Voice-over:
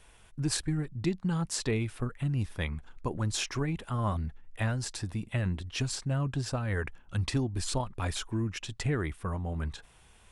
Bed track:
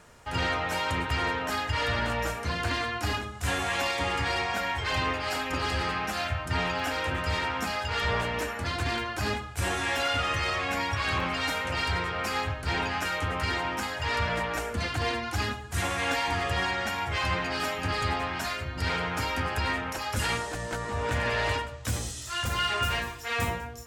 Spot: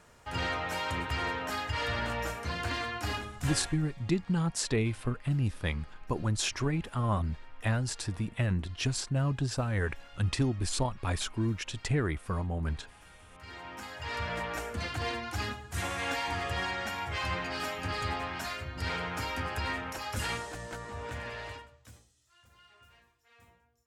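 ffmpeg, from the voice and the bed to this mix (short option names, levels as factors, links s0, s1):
-filter_complex "[0:a]adelay=3050,volume=1.12[s0];[1:a]volume=7.94,afade=t=out:st=3.37:d=0.4:silence=0.0707946,afade=t=in:st=13.3:d=1.18:silence=0.0749894,afade=t=out:st=20.19:d=1.87:silence=0.0421697[s1];[s0][s1]amix=inputs=2:normalize=0"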